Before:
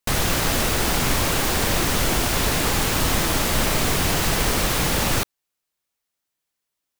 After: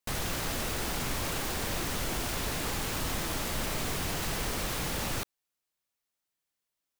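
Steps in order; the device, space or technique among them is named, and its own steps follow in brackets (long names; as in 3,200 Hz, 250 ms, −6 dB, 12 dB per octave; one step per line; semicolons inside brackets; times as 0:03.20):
clipper into limiter (hard clipping −12.5 dBFS, distortion −27 dB; brickwall limiter −19.5 dBFS, peak gain reduction 7 dB)
level −5 dB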